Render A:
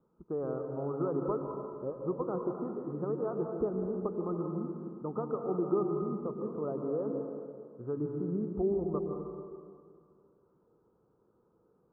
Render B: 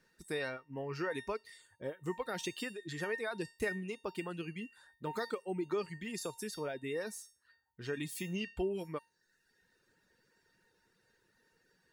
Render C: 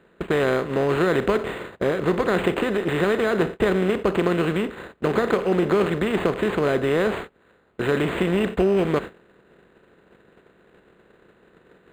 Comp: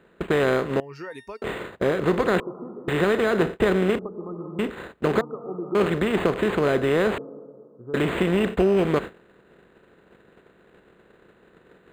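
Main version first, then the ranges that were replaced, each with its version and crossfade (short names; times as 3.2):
C
0.8–1.42 from B
2.4–2.88 from A
3.99–4.59 from A
5.21–5.75 from A
7.18–7.94 from A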